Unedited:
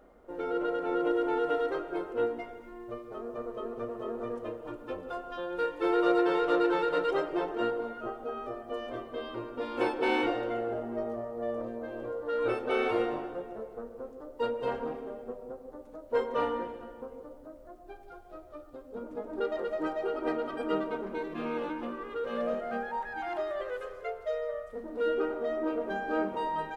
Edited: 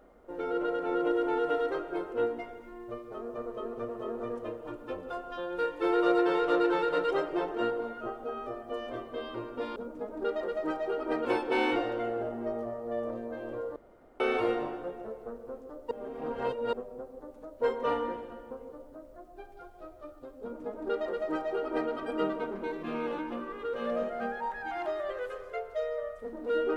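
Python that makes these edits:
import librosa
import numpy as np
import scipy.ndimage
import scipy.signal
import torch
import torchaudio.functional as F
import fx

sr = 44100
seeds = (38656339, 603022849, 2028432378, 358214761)

y = fx.edit(x, sr, fx.room_tone_fill(start_s=12.27, length_s=0.44),
    fx.reverse_span(start_s=14.42, length_s=0.82),
    fx.duplicate(start_s=18.92, length_s=1.49, to_s=9.76), tone=tone)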